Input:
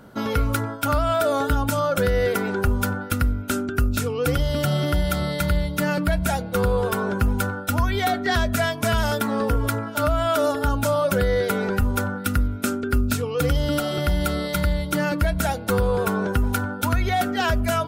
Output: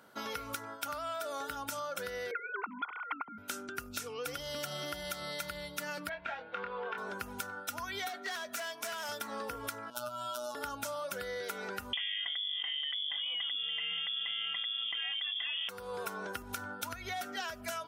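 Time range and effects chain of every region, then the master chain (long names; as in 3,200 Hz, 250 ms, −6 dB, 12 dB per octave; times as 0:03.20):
0:02.31–0:03.38: three sine waves on the formant tracks + comb filter 0.9 ms, depth 75%
0:06.09–0:06.98: low-pass filter 2,600 Hz 24 dB per octave + spectral tilt +2.5 dB per octave + double-tracking delay 25 ms −4.5 dB
0:08.09–0:09.09: high-pass filter 260 Hz + hard clipping −21 dBFS
0:09.90–0:10.55: Butterworth band-reject 2,000 Hz, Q 1.4 + parametric band 440 Hz −5 dB 0.23 octaves + phases set to zero 122 Hz
0:11.93–0:15.69: voice inversion scrambler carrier 3,400 Hz + envelope flattener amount 100%
0:16.42–0:17.22: low-shelf EQ 130 Hz +9.5 dB + downward compressor 5 to 1, threshold −16 dBFS
whole clip: high-pass filter 1,100 Hz 6 dB per octave; dynamic equaliser 5,800 Hz, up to +6 dB, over −53 dBFS, Q 4.5; downward compressor, threshold −30 dBFS; level −5.5 dB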